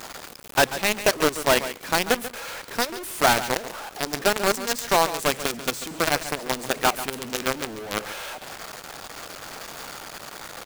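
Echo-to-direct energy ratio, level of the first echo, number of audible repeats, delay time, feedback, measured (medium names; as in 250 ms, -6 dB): -13.0 dB, -13.0 dB, 1, 139 ms, no regular repeats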